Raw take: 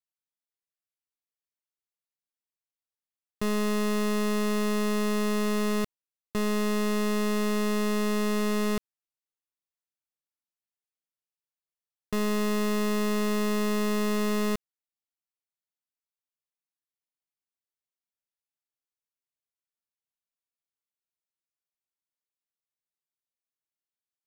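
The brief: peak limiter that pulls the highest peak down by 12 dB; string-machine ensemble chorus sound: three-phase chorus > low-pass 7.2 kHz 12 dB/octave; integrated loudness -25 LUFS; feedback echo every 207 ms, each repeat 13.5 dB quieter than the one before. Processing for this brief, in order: peak limiter -38 dBFS; feedback delay 207 ms, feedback 21%, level -13.5 dB; three-phase chorus; low-pass 7.2 kHz 12 dB/octave; trim +17 dB

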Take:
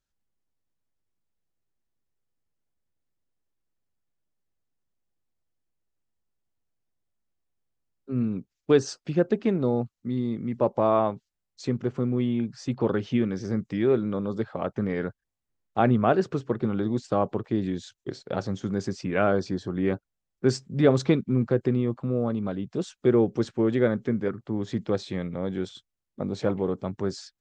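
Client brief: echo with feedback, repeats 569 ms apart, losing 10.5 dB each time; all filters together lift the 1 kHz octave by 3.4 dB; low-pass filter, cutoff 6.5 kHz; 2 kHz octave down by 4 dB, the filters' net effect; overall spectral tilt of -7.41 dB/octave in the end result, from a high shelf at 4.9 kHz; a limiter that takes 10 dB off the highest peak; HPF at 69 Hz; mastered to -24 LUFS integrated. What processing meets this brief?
high-pass 69 Hz; low-pass 6.5 kHz; peaking EQ 1 kHz +7 dB; peaking EQ 2 kHz -8.5 dB; treble shelf 4.9 kHz -6.5 dB; peak limiter -15.5 dBFS; feedback delay 569 ms, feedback 30%, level -10.5 dB; trim +4.5 dB

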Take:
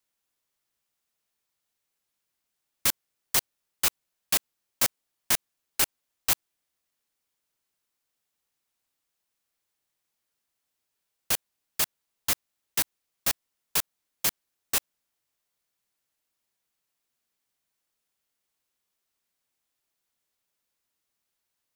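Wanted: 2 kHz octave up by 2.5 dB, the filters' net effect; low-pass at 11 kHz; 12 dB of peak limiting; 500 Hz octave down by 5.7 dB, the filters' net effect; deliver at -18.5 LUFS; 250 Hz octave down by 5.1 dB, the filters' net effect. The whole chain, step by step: low-pass 11 kHz; peaking EQ 250 Hz -5 dB; peaking EQ 500 Hz -6.5 dB; peaking EQ 2 kHz +3.5 dB; trim +21 dB; peak limiter -2 dBFS

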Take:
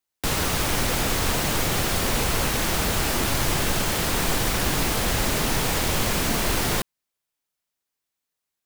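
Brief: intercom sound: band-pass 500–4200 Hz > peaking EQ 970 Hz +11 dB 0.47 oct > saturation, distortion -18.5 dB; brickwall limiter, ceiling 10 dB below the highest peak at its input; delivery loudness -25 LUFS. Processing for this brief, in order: peak limiter -20.5 dBFS; band-pass 500–4200 Hz; peaking EQ 970 Hz +11 dB 0.47 oct; saturation -25 dBFS; trim +7.5 dB

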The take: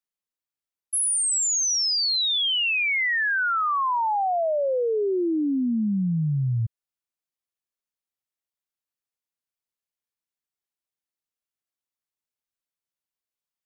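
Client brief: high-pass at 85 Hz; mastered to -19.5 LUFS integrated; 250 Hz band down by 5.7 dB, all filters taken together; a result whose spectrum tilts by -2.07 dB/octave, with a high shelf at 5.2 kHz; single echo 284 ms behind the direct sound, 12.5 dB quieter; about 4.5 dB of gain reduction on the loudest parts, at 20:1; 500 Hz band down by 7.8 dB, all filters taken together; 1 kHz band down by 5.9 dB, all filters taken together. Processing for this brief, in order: high-pass 85 Hz; peaking EQ 250 Hz -5.5 dB; peaking EQ 500 Hz -7 dB; peaking EQ 1 kHz -5.5 dB; treble shelf 5.2 kHz +5 dB; compression 20:1, threshold -23 dBFS; delay 284 ms -12.5 dB; trim +5.5 dB

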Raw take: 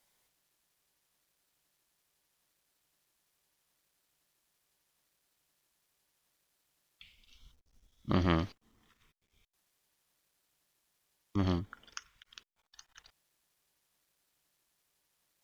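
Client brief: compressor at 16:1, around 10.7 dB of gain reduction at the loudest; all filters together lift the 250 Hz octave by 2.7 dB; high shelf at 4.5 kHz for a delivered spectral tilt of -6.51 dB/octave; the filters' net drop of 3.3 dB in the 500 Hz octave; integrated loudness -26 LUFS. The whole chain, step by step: peaking EQ 250 Hz +6 dB; peaking EQ 500 Hz -8.5 dB; treble shelf 4.5 kHz -8 dB; compression 16:1, threshold -33 dBFS; trim +17.5 dB

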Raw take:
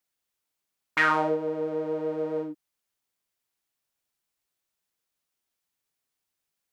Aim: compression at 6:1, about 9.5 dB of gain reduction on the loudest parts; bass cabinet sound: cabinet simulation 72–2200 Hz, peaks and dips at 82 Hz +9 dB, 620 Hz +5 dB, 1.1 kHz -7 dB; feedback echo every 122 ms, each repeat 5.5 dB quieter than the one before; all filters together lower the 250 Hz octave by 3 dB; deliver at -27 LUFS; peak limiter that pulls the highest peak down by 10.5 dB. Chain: peaking EQ 250 Hz -4.5 dB; compression 6:1, threshold -28 dBFS; peak limiter -25 dBFS; cabinet simulation 72–2200 Hz, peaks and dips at 82 Hz +9 dB, 620 Hz +5 dB, 1.1 kHz -7 dB; feedback delay 122 ms, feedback 53%, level -5.5 dB; trim +4 dB

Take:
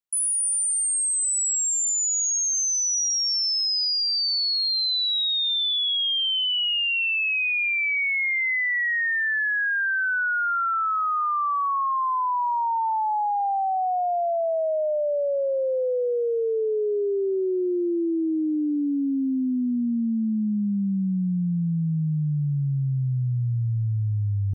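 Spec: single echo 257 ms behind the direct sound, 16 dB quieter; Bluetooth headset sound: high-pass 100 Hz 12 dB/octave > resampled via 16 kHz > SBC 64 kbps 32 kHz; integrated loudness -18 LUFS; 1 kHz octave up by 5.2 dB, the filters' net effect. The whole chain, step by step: high-pass 100 Hz 12 dB/octave; peaking EQ 1 kHz +6.5 dB; delay 257 ms -16 dB; resampled via 16 kHz; trim +3.5 dB; SBC 64 kbps 32 kHz

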